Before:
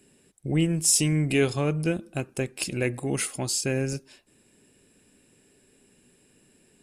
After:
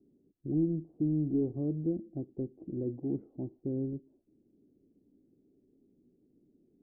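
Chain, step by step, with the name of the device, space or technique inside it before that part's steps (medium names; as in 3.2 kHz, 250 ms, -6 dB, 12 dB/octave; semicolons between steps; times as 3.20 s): overdriven synthesiser ladder filter (saturation -17 dBFS, distortion -17 dB; four-pole ladder low-pass 360 Hz, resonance 55%); peaking EQ 740 Hz +10.5 dB 0.83 oct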